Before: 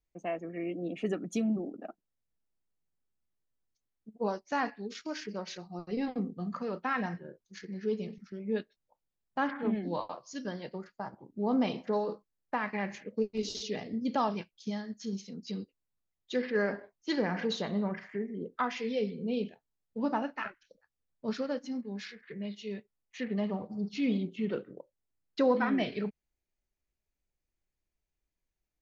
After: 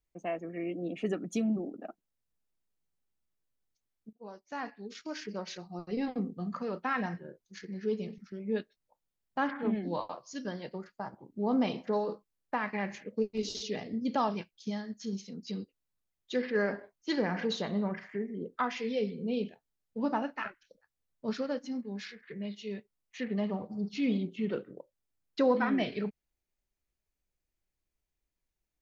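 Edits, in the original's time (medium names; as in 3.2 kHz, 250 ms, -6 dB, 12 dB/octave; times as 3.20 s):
4.13–5.33 s: fade in linear, from -22 dB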